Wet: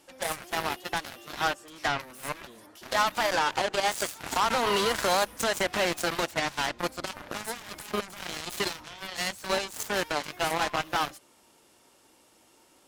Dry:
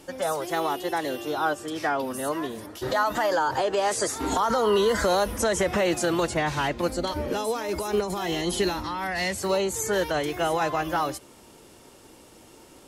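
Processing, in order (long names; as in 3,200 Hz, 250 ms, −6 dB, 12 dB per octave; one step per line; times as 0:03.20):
low-shelf EQ 240 Hz −11.5 dB
harmonic generator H 3 −26 dB, 5 −25 dB, 7 −13 dB, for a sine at −14 dBFS
parametric band 440 Hz −4 dB 0.53 octaves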